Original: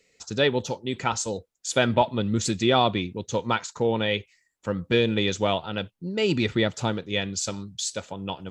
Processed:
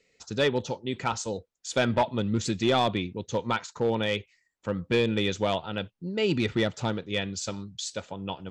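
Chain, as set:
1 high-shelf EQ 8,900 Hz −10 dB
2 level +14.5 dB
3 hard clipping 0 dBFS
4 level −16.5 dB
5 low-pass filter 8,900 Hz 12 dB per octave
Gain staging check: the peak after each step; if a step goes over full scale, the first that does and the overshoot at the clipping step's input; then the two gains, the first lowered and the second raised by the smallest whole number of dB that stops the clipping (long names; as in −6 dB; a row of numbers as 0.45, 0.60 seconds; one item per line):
−6.5, +8.0, 0.0, −16.5, −16.0 dBFS
step 2, 8.0 dB
step 2 +6.5 dB, step 4 −8.5 dB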